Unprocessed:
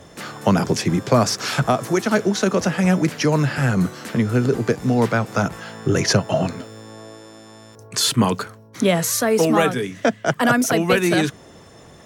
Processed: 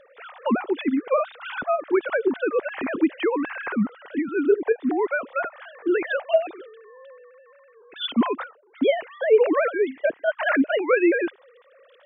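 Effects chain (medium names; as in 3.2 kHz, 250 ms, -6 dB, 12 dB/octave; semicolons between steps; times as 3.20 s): formants replaced by sine waves; trim -4 dB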